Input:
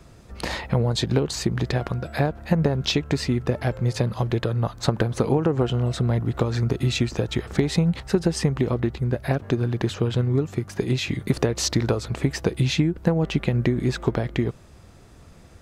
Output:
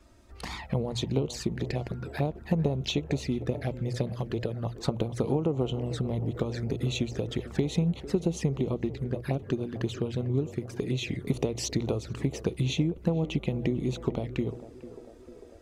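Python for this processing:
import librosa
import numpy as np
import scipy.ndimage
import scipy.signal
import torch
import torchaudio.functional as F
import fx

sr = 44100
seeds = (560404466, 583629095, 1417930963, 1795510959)

y = fx.hum_notches(x, sr, base_hz=60, count=2)
y = fx.env_flanger(y, sr, rest_ms=3.7, full_db=-20.5)
y = fx.echo_banded(y, sr, ms=448, feedback_pct=73, hz=510.0, wet_db=-13)
y = y * 10.0 ** (-5.5 / 20.0)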